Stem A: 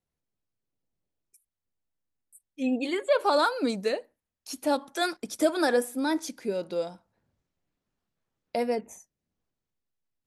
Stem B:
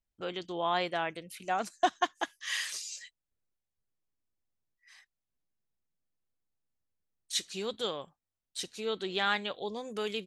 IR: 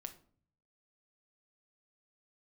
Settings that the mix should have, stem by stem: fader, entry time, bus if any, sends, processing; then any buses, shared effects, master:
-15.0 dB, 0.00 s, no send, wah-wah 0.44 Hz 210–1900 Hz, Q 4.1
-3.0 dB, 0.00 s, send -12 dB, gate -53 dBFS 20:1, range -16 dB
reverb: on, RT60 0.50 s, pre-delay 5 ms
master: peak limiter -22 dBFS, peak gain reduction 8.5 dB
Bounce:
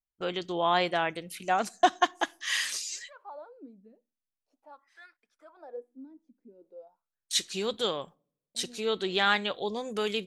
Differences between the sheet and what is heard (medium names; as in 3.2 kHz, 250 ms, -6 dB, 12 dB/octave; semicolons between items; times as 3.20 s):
stem B -3.0 dB -> +3.5 dB; master: missing peak limiter -22 dBFS, peak gain reduction 8.5 dB